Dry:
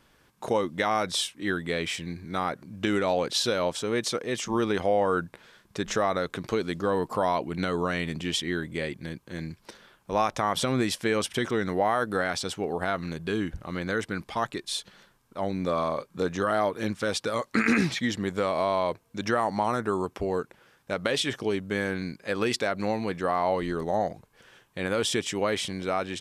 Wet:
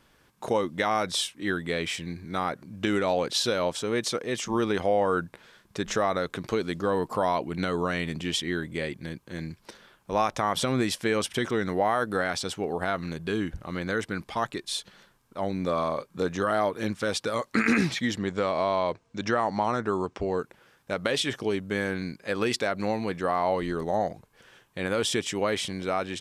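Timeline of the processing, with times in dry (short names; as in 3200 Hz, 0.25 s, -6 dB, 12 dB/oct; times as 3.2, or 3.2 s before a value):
18.18–20.39 LPF 7400 Hz 24 dB/oct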